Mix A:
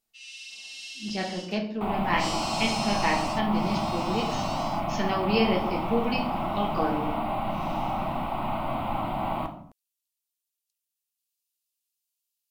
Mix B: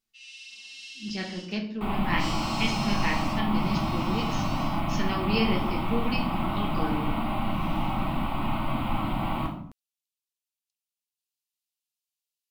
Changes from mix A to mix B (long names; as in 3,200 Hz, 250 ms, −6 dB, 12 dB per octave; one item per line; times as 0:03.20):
first sound: add high-shelf EQ 6,500 Hz −10 dB
second sound: send +8.0 dB
master: add parametric band 680 Hz −10.5 dB 1.1 octaves